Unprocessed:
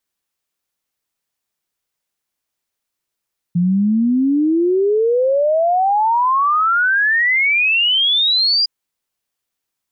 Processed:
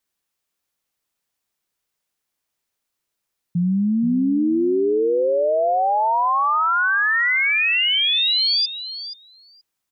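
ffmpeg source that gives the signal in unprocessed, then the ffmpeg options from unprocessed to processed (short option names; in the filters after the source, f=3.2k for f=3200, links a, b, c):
-f lavfi -i "aevalsrc='0.251*clip(min(t,5.11-t)/0.01,0,1)*sin(2*PI*170*5.11/log(4900/170)*(exp(log(4900/170)*t/5.11)-1))':d=5.11:s=44100"
-filter_complex "[0:a]alimiter=limit=-16dB:level=0:latency=1:release=17,asplit=2[a][b];[b]adelay=477,lowpass=f=4.3k:p=1,volume=-9.5dB,asplit=2[c][d];[d]adelay=477,lowpass=f=4.3k:p=1,volume=0.16[e];[c][e]amix=inputs=2:normalize=0[f];[a][f]amix=inputs=2:normalize=0"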